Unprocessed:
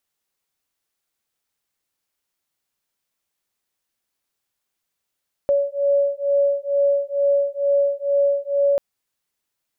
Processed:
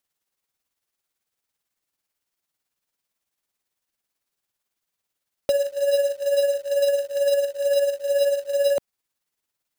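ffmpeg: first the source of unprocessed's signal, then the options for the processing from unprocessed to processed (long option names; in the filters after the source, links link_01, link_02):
-f lavfi -i "aevalsrc='0.106*(sin(2*PI*563*t)+sin(2*PI*565.2*t))':duration=3.29:sample_rate=44100"
-filter_complex "[0:a]acrossover=split=230[link_01][link_02];[link_02]acrusher=bits=3:mode=log:mix=0:aa=0.000001[link_03];[link_01][link_03]amix=inputs=2:normalize=0,tremolo=f=18:d=0.48"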